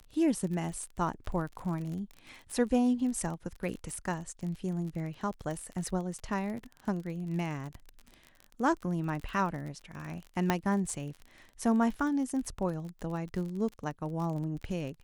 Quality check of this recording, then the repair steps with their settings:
crackle 36/s -37 dBFS
10.5 pop -12 dBFS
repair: de-click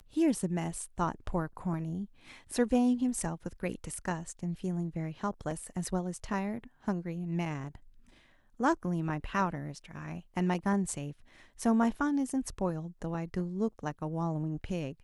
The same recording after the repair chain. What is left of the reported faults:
none

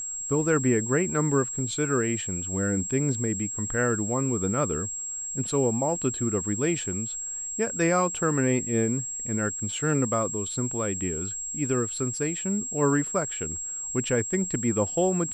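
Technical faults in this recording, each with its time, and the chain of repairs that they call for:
tone 7600 Hz -31 dBFS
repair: notch 7600 Hz, Q 30

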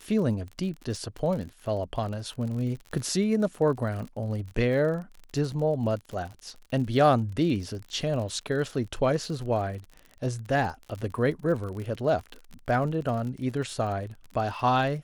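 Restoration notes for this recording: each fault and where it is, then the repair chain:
crackle 44/s -35 dBFS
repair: de-click

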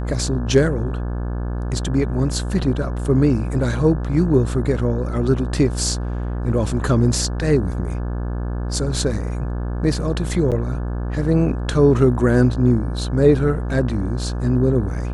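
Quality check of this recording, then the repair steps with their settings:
buzz 60 Hz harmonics 29 -24 dBFS
10.51–10.52 gap 7.9 ms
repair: de-hum 60 Hz, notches 29; interpolate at 10.51, 7.9 ms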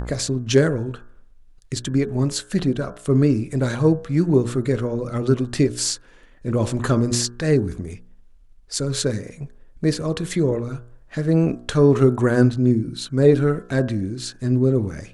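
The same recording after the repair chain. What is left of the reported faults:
none

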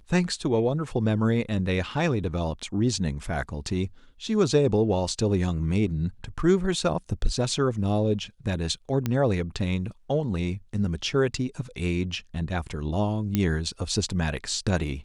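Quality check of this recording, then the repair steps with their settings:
9.06 pop -13 dBFS
13.35 pop -10 dBFS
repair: de-click

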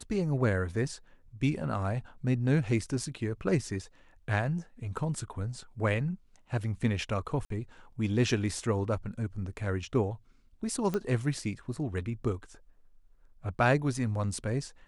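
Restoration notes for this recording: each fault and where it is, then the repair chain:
7.45–7.5 gap 53 ms
10.94 pop -19 dBFS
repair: de-click; interpolate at 7.45, 53 ms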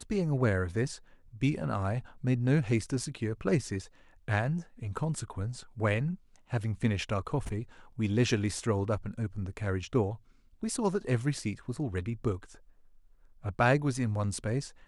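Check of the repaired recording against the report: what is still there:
10.94 pop

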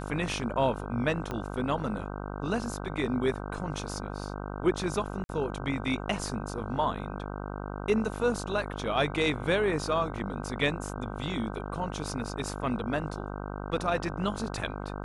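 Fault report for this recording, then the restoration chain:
buzz 50 Hz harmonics 31 -37 dBFS
1.31 pop -20 dBFS
5.24–5.29 gap 51 ms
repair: de-click; de-hum 50 Hz, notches 31; interpolate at 5.24, 51 ms

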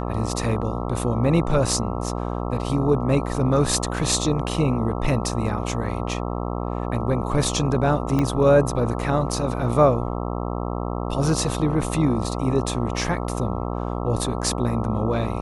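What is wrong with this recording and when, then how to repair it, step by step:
buzz 60 Hz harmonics 22 -27 dBFS
8.19 pop -11 dBFS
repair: de-click; de-hum 60 Hz, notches 22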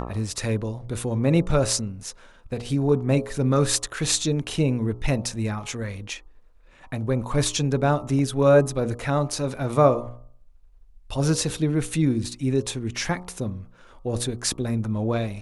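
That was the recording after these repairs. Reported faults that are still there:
8.19 pop

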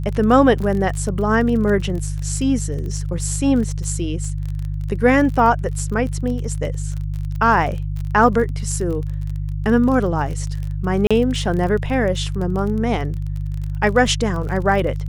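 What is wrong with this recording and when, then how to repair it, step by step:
crackle 31/s -26 dBFS
hum 50 Hz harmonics 3 -24 dBFS
11.07–11.11 gap 36 ms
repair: de-click; de-hum 50 Hz, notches 3; interpolate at 11.07, 36 ms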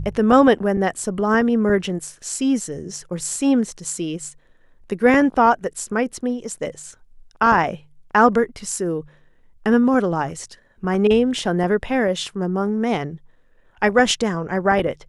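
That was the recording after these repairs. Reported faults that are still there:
none

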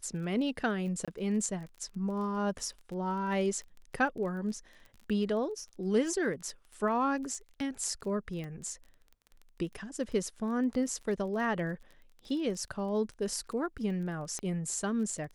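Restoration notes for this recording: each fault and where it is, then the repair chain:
crackle 21/s -41 dBFS
1.05–1.08 gap 26 ms
8.44 pop -29 dBFS
14.39 pop -25 dBFS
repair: de-click; interpolate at 1.05, 26 ms

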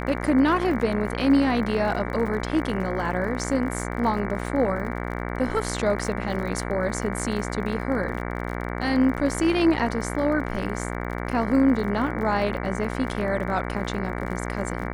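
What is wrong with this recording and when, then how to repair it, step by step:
buzz 60 Hz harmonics 38 -30 dBFS
crackle 42/s -33 dBFS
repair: de-click; de-hum 60 Hz, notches 38

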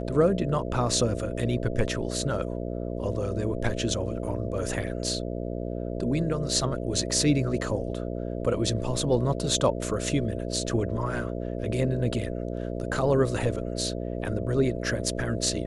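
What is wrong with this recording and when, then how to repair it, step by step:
buzz 60 Hz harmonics 11 -32 dBFS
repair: de-hum 60 Hz, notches 11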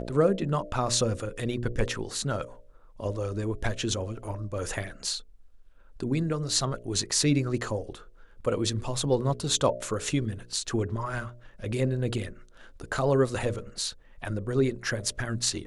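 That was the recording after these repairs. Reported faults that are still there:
none

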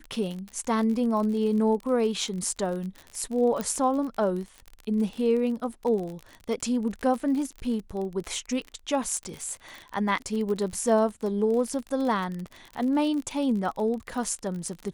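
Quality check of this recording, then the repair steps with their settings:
crackle 43/s -32 dBFS
3.61 pop -16 dBFS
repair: de-click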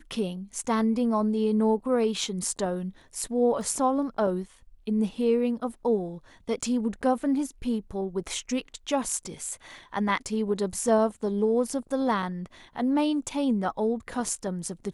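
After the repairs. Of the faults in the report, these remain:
3.61 pop

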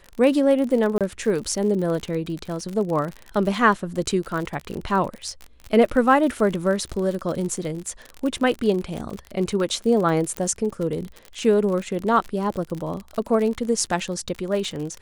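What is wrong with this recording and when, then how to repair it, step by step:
crackle 52/s -27 dBFS
0.98–1.01 gap 27 ms
10.37 pop -12 dBFS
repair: de-click; interpolate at 0.98, 27 ms

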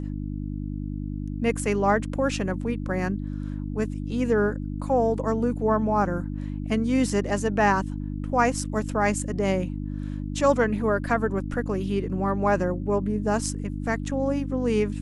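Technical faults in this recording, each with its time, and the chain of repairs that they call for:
hum 50 Hz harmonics 6 -31 dBFS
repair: de-hum 50 Hz, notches 6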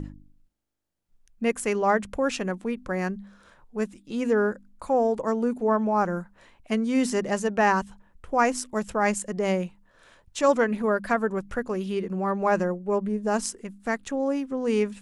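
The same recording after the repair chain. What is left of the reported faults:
none

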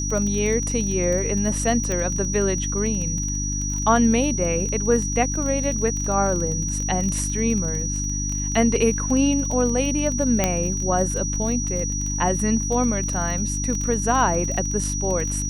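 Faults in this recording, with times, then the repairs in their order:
crackle 24/s -26 dBFS
hum 50 Hz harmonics 6 -27 dBFS
tone 5800 Hz -27 dBFS
1.92 pop -13 dBFS
10.44 pop -4 dBFS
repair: de-click; de-hum 50 Hz, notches 6; notch 5800 Hz, Q 30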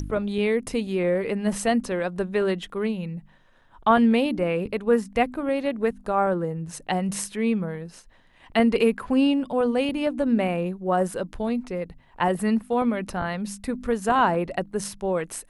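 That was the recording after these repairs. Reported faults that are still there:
none

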